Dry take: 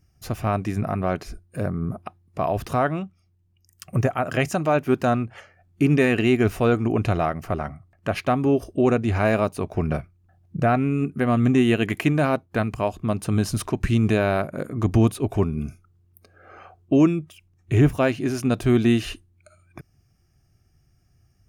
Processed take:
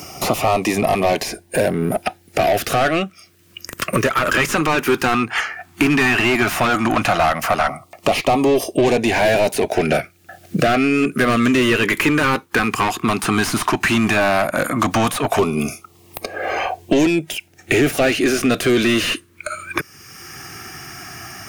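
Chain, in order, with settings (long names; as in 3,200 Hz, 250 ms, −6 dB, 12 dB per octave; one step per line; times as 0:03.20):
RIAA equalisation recording
in parallel at −6 dB: asymmetric clip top −26.5 dBFS
on the sum: mid-hump overdrive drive 28 dB, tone 1,500 Hz, clips at −4 dBFS
auto-filter notch saw down 0.13 Hz 360–1,700 Hz
multiband upward and downward compressor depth 70%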